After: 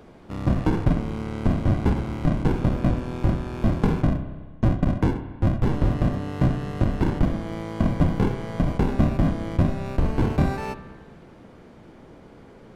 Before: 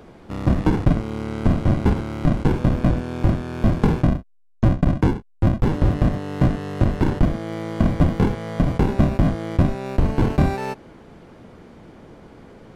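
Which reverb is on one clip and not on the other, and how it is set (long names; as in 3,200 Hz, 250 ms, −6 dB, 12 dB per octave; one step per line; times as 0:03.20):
spring reverb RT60 1.5 s, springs 31/54 ms, chirp 50 ms, DRR 9 dB
level −3.5 dB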